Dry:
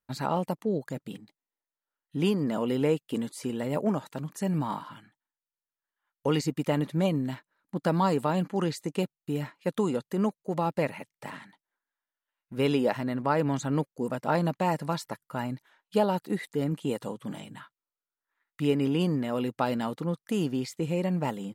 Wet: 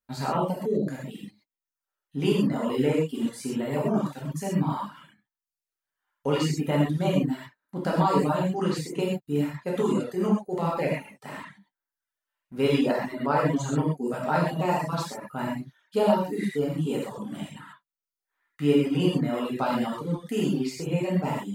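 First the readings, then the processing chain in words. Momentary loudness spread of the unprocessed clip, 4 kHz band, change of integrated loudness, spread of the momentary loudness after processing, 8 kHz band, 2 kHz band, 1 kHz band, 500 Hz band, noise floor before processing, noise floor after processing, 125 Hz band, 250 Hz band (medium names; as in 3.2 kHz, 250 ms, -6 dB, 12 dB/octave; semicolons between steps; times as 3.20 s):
12 LU, +2.5 dB, +2.5 dB, 13 LU, +3.0 dB, +2.5 dB, +2.5 dB, +2.5 dB, under -85 dBFS, under -85 dBFS, +2.5 dB, +2.5 dB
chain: gated-style reverb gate 160 ms flat, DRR -6 dB; reverb removal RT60 0.65 s; trim -3 dB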